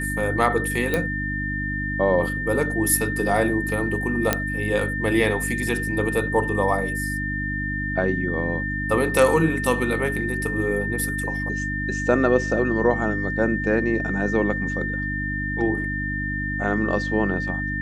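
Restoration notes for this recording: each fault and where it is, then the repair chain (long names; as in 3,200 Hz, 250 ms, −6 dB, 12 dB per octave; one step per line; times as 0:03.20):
mains hum 50 Hz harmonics 6 −29 dBFS
whistle 1,800 Hz −27 dBFS
0:00.94: click −9 dBFS
0:04.33: click −3 dBFS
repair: click removal
hum removal 50 Hz, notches 6
notch filter 1,800 Hz, Q 30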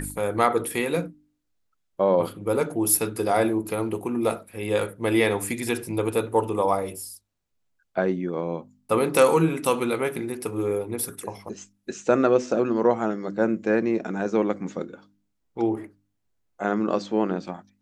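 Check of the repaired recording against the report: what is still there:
none of them is left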